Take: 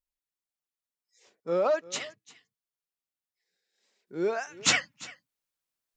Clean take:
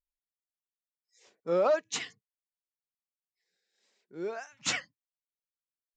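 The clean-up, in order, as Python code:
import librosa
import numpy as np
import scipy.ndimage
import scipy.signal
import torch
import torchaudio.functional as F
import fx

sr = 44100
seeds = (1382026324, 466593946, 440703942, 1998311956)

y = fx.fix_echo_inverse(x, sr, delay_ms=346, level_db=-20.0)
y = fx.fix_level(y, sr, at_s=4.07, step_db=-7.5)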